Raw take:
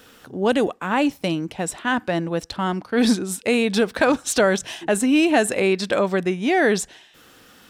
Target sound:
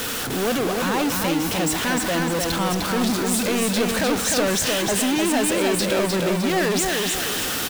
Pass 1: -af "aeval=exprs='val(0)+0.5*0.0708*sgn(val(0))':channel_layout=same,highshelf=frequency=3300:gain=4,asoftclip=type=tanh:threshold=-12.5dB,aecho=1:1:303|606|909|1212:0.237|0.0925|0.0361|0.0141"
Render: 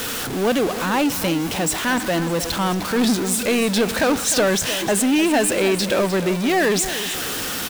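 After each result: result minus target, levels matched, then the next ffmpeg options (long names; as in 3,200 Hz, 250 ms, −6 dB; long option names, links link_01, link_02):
echo-to-direct −9 dB; soft clipping: distortion −8 dB
-af "aeval=exprs='val(0)+0.5*0.0708*sgn(val(0))':channel_layout=same,highshelf=frequency=3300:gain=4,asoftclip=type=tanh:threshold=-12.5dB,aecho=1:1:303|606|909|1212|1515:0.668|0.261|0.102|0.0396|0.0155"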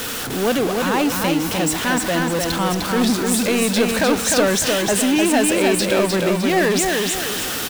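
soft clipping: distortion −8 dB
-af "aeval=exprs='val(0)+0.5*0.0708*sgn(val(0))':channel_layout=same,highshelf=frequency=3300:gain=4,asoftclip=type=tanh:threshold=-20dB,aecho=1:1:303|606|909|1212|1515:0.668|0.261|0.102|0.0396|0.0155"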